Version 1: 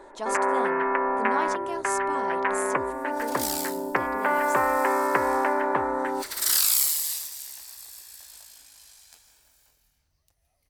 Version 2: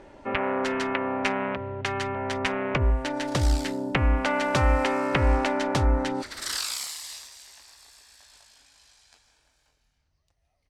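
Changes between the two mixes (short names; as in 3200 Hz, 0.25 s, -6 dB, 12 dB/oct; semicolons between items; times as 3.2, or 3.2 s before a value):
speech: muted; first sound: remove speaker cabinet 330–2000 Hz, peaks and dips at 390 Hz +5 dB, 1000 Hz +9 dB, 1700 Hz +5 dB; second sound: add air absorption 92 m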